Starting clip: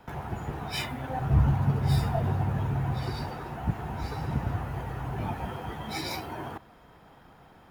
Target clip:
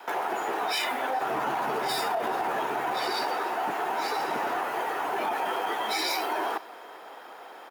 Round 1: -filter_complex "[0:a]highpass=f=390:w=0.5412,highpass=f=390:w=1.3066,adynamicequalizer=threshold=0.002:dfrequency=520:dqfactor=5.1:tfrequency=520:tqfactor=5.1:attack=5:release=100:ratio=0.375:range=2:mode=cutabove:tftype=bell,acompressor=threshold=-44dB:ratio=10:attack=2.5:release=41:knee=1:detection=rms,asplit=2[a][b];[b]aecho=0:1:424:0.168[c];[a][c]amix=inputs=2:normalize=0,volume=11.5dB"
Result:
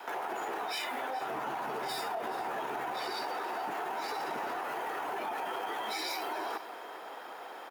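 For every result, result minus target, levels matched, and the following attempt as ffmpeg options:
compressor: peak gain reduction +7.5 dB; echo-to-direct +9 dB
-filter_complex "[0:a]highpass=f=390:w=0.5412,highpass=f=390:w=1.3066,adynamicequalizer=threshold=0.002:dfrequency=520:dqfactor=5.1:tfrequency=520:tqfactor=5.1:attack=5:release=100:ratio=0.375:range=2:mode=cutabove:tftype=bell,acompressor=threshold=-35.5dB:ratio=10:attack=2.5:release=41:knee=1:detection=rms,asplit=2[a][b];[b]aecho=0:1:424:0.168[c];[a][c]amix=inputs=2:normalize=0,volume=11.5dB"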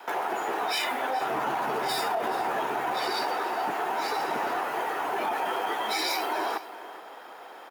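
echo-to-direct +9 dB
-filter_complex "[0:a]highpass=f=390:w=0.5412,highpass=f=390:w=1.3066,adynamicequalizer=threshold=0.002:dfrequency=520:dqfactor=5.1:tfrequency=520:tqfactor=5.1:attack=5:release=100:ratio=0.375:range=2:mode=cutabove:tftype=bell,acompressor=threshold=-35.5dB:ratio=10:attack=2.5:release=41:knee=1:detection=rms,asplit=2[a][b];[b]aecho=0:1:424:0.0596[c];[a][c]amix=inputs=2:normalize=0,volume=11.5dB"

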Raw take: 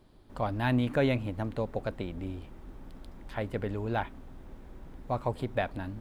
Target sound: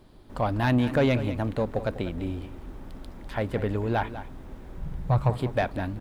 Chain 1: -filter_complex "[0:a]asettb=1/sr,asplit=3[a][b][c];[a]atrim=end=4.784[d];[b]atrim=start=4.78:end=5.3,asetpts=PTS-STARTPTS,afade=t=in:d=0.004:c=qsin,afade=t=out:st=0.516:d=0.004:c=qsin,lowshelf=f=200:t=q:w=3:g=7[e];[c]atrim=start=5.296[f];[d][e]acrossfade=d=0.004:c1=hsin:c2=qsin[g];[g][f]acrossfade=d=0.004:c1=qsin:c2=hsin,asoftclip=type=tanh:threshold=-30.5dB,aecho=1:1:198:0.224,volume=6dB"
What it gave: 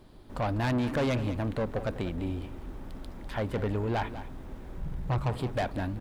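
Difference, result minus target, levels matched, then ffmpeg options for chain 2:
soft clip: distortion +10 dB
-filter_complex "[0:a]asettb=1/sr,asplit=3[a][b][c];[a]atrim=end=4.784[d];[b]atrim=start=4.78:end=5.3,asetpts=PTS-STARTPTS,afade=t=in:d=0.004:c=qsin,afade=t=out:st=0.516:d=0.004:c=qsin,lowshelf=f=200:t=q:w=3:g=7[e];[c]atrim=start=5.296[f];[d][e]acrossfade=d=0.004:c1=hsin:c2=qsin[g];[g][f]acrossfade=d=0.004:c1=qsin:c2=hsin,asoftclip=type=tanh:threshold=-20.5dB,aecho=1:1:198:0.224,volume=6dB"

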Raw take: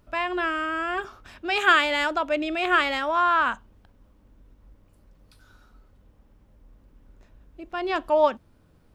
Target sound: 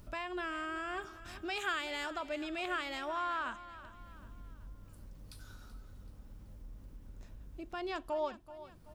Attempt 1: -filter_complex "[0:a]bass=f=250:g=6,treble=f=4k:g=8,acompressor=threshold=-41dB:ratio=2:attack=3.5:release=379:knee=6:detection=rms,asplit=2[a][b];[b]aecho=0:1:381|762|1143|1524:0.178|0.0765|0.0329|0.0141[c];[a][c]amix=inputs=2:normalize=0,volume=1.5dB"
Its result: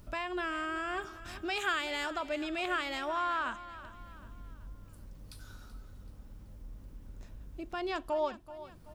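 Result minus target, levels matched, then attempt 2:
compressor: peak gain reduction -3.5 dB
-filter_complex "[0:a]bass=f=250:g=6,treble=f=4k:g=8,acompressor=threshold=-48dB:ratio=2:attack=3.5:release=379:knee=6:detection=rms,asplit=2[a][b];[b]aecho=0:1:381|762|1143|1524:0.178|0.0765|0.0329|0.0141[c];[a][c]amix=inputs=2:normalize=0,volume=1.5dB"

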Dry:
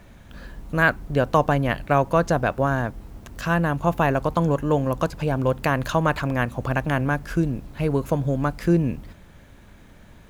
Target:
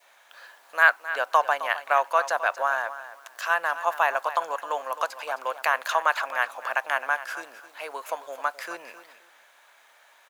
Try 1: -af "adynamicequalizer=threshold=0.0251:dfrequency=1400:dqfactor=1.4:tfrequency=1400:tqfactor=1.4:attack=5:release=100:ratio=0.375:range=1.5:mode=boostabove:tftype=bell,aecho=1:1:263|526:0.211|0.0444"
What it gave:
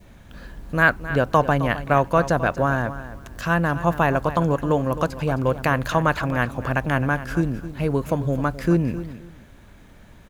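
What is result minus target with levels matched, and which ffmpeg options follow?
1000 Hz band -2.5 dB
-af "adynamicequalizer=threshold=0.0251:dfrequency=1400:dqfactor=1.4:tfrequency=1400:tqfactor=1.4:attack=5:release=100:ratio=0.375:range=1.5:mode=boostabove:tftype=bell,highpass=f=710:w=0.5412,highpass=f=710:w=1.3066,aecho=1:1:263|526:0.211|0.0444"

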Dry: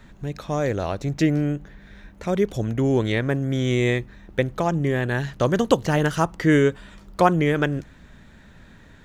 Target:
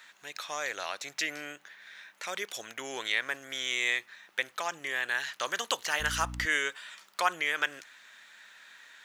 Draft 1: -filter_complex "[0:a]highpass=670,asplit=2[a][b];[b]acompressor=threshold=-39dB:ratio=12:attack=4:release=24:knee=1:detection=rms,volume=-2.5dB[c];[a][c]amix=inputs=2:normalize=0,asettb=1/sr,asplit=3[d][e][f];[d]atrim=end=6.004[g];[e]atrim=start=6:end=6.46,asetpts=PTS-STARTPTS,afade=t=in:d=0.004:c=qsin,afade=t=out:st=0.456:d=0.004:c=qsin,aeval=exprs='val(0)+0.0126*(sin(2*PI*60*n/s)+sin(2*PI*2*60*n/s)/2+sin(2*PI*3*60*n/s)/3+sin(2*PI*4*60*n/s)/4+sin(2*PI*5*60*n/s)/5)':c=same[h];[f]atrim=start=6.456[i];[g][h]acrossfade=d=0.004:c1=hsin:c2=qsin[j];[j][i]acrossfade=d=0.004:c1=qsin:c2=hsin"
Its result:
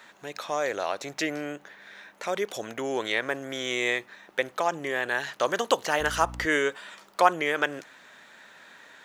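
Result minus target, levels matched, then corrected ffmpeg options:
500 Hz band +8.5 dB
-filter_complex "[0:a]highpass=1.6k,asplit=2[a][b];[b]acompressor=threshold=-39dB:ratio=12:attack=4:release=24:knee=1:detection=rms,volume=-2.5dB[c];[a][c]amix=inputs=2:normalize=0,asettb=1/sr,asplit=3[d][e][f];[d]atrim=end=6.004[g];[e]atrim=start=6:end=6.46,asetpts=PTS-STARTPTS,afade=t=in:d=0.004:c=qsin,afade=t=out:st=0.456:d=0.004:c=qsin,aeval=exprs='val(0)+0.0126*(sin(2*PI*60*n/s)+sin(2*PI*2*60*n/s)/2+sin(2*PI*3*60*n/s)/3+sin(2*PI*4*60*n/s)/4+sin(2*PI*5*60*n/s)/5)':c=same[h];[f]atrim=start=6.456[i];[g][h]acrossfade=d=0.004:c1=hsin:c2=qsin[j];[j][i]acrossfade=d=0.004:c1=qsin:c2=hsin"

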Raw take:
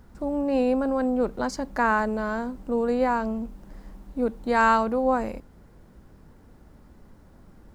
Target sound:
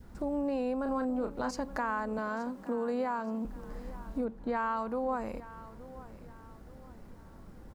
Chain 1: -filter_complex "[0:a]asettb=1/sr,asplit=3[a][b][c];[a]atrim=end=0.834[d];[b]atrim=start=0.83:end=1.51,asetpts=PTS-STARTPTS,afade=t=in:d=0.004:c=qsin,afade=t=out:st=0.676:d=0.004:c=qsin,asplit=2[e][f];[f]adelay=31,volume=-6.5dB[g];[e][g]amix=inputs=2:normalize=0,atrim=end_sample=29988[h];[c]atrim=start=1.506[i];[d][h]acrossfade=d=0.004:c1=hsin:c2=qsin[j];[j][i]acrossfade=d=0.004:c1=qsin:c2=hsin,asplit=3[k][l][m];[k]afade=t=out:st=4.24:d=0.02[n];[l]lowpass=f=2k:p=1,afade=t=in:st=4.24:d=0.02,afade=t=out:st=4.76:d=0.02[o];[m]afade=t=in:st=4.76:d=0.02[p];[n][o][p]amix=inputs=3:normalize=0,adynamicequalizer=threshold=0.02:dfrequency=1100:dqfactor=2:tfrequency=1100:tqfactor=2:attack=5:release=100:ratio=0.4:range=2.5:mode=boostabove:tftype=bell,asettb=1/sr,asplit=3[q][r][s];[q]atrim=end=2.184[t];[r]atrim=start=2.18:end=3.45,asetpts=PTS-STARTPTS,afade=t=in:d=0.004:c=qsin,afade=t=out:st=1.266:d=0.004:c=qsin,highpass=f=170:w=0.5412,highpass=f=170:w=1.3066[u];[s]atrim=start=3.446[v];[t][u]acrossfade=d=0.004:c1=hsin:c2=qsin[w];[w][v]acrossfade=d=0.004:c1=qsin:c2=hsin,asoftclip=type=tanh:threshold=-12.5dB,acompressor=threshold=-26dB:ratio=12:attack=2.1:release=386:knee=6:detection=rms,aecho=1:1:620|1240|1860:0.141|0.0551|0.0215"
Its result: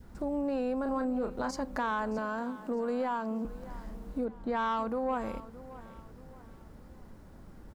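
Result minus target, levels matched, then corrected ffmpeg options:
soft clip: distortion +18 dB; echo 0.253 s early
-filter_complex "[0:a]asettb=1/sr,asplit=3[a][b][c];[a]atrim=end=0.834[d];[b]atrim=start=0.83:end=1.51,asetpts=PTS-STARTPTS,afade=t=in:d=0.004:c=qsin,afade=t=out:st=0.676:d=0.004:c=qsin,asplit=2[e][f];[f]adelay=31,volume=-6.5dB[g];[e][g]amix=inputs=2:normalize=0,atrim=end_sample=29988[h];[c]atrim=start=1.506[i];[d][h]acrossfade=d=0.004:c1=hsin:c2=qsin[j];[j][i]acrossfade=d=0.004:c1=qsin:c2=hsin,asplit=3[k][l][m];[k]afade=t=out:st=4.24:d=0.02[n];[l]lowpass=f=2k:p=1,afade=t=in:st=4.24:d=0.02,afade=t=out:st=4.76:d=0.02[o];[m]afade=t=in:st=4.76:d=0.02[p];[n][o][p]amix=inputs=3:normalize=0,adynamicequalizer=threshold=0.02:dfrequency=1100:dqfactor=2:tfrequency=1100:tqfactor=2:attack=5:release=100:ratio=0.4:range=2.5:mode=boostabove:tftype=bell,asettb=1/sr,asplit=3[q][r][s];[q]atrim=end=2.184[t];[r]atrim=start=2.18:end=3.45,asetpts=PTS-STARTPTS,afade=t=in:d=0.004:c=qsin,afade=t=out:st=1.266:d=0.004:c=qsin,highpass=f=170:w=0.5412,highpass=f=170:w=1.3066[u];[s]atrim=start=3.446[v];[t][u]acrossfade=d=0.004:c1=hsin:c2=qsin[w];[w][v]acrossfade=d=0.004:c1=qsin:c2=hsin,asoftclip=type=tanh:threshold=-1.5dB,acompressor=threshold=-26dB:ratio=12:attack=2.1:release=386:knee=6:detection=rms,aecho=1:1:873|1746|2619:0.141|0.0551|0.0215"

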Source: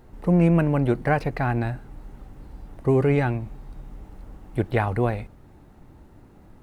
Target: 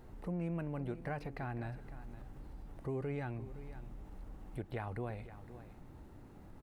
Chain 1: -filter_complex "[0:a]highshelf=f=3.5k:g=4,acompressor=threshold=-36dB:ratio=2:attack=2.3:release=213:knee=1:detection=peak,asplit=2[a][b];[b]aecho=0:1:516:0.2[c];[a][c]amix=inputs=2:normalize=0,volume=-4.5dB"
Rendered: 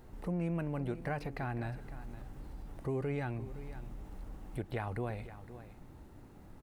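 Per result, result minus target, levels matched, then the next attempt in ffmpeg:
compressor: peak gain reduction -3 dB; 8000 Hz band +3.0 dB
-filter_complex "[0:a]highshelf=f=3.5k:g=4,acompressor=threshold=-42.5dB:ratio=2:attack=2.3:release=213:knee=1:detection=peak,asplit=2[a][b];[b]aecho=0:1:516:0.2[c];[a][c]amix=inputs=2:normalize=0,volume=-4.5dB"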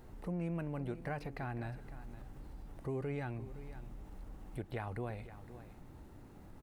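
8000 Hz band +3.5 dB
-filter_complex "[0:a]acompressor=threshold=-42.5dB:ratio=2:attack=2.3:release=213:knee=1:detection=peak,asplit=2[a][b];[b]aecho=0:1:516:0.2[c];[a][c]amix=inputs=2:normalize=0,volume=-4.5dB"

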